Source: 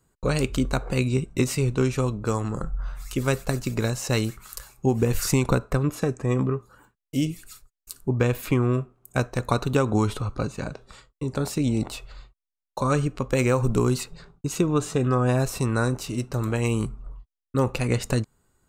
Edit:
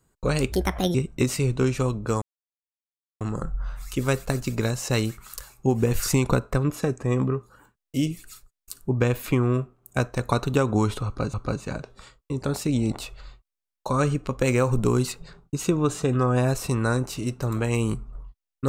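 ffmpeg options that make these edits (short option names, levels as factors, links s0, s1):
-filter_complex "[0:a]asplit=5[s0][s1][s2][s3][s4];[s0]atrim=end=0.524[s5];[s1]atrim=start=0.52:end=1.13,asetpts=PTS-STARTPTS,asetrate=63063,aresample=44100[s6];[s2]atrim=start=1.126:end=2.4,asetpts=PTS-STARTPTS,afade=t=out:st=1.27:d=0.004:c=hsin,apad=pad_dur=0.99[s7];[s3]atrim=start=2.4:end=10.532,asetpts=PTS-STARTPTS,afade=t=in:d=0.004:c=hsin[s8];[s4]atrim=start=10.248[s9];[s5][s6]acrossfade=d=0.004:c1=hsin:c2=hsin[s10];[s7][s8]concat=n=2:v=0:a=1[s11];[s10][s11]acrossfade=d=0.004:c1=hsin:c2=hsin[s12];[s12][s9]acrossfade=d=0.004:c1=hsin:c2=hsin"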